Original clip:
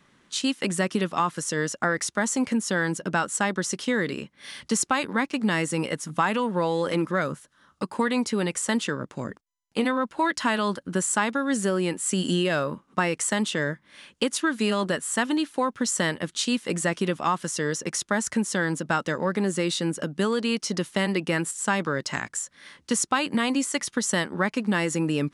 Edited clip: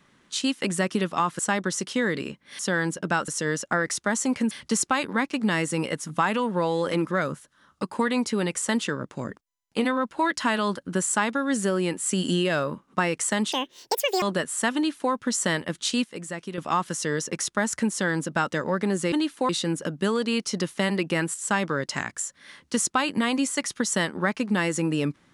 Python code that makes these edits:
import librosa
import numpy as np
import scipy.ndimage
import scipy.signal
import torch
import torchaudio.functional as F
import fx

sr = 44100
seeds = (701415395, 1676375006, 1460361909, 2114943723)

y = fx.edit(x, sr, fx.swap(start_s=1.39, length_s=1.23, other_s=3.31, other_length_s=1.2),
    fx.speed_span(start_s=13.52, length_s=1.24, speed=1.77),
    fx.duplicate(start_s=15.29, length_s=0.37, to_s=19.66),
    fx.clip_gain(start_s=16.58, length_s=0.54, db=-9.0), tone=tone)